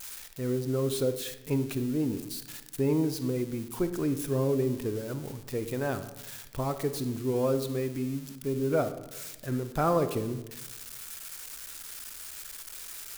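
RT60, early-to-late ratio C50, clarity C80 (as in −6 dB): 1.0 s, 11.5 dB, 13.5 dB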